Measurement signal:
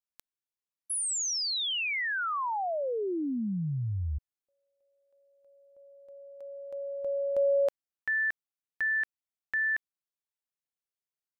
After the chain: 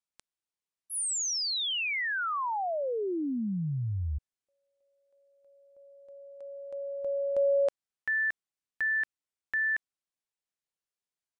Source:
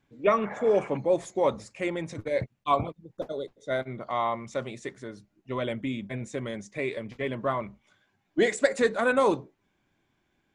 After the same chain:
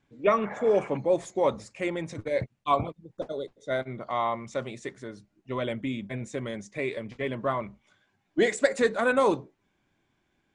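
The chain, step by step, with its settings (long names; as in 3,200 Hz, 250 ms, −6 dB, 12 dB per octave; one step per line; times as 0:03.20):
downsampling to 22,050 Hz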